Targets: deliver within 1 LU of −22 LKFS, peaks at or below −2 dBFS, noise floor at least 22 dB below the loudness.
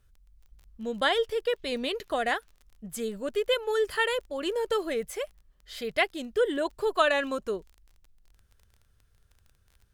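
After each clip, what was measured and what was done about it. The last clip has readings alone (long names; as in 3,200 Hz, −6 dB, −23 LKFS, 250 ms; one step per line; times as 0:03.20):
crackle rate 26 per second; integrated loudness −29.0 LKFS; sample peak −10.0 dBFS; target loudness −22.0 LKFS
→ click removal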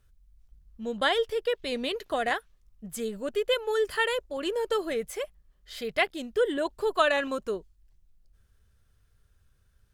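crackle rate 0.81 per second; integrated loudness −29.0 LKFS; sample peak −10.0 dBFS; target loudness −22.0 LKFS
→ level +7 dB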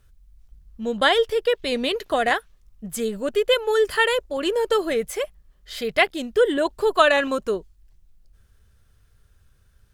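integrated loudness −22.0 LKFS; sample peak −3.0 dBFS; background noise floor −59 dBFS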